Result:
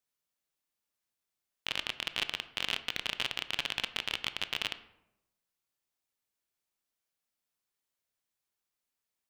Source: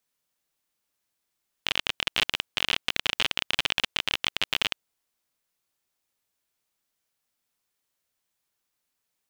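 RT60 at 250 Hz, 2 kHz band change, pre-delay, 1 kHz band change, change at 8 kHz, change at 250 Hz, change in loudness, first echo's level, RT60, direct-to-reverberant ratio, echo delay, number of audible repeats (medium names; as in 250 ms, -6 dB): 1.0 s, -7.5 dB, 17 ms, -7.0 dB, -7.5 dB, -7.0 dB, -7.5 dB, no echo, 0.90 s, 11.5 dB, no echo, no echo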